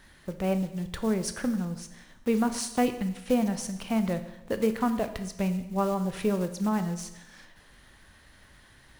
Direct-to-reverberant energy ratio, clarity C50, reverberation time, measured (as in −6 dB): 9.0 dB, 11.5 dB, 0.95 s